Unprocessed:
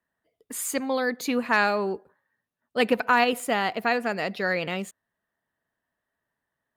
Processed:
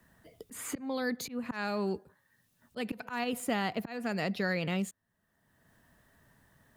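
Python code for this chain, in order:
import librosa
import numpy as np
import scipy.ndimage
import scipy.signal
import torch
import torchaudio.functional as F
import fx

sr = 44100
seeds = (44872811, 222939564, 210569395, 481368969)

y = fx.auto_swell(x, sr, attack_ms=410.0)
y = fx.bass_treble(y, sr, bass_db=12, treble_db=4)
y = fx.band_squash(y, sr, depth_pct=70)
y = y * librosa.db_to_amplitude(-6.0)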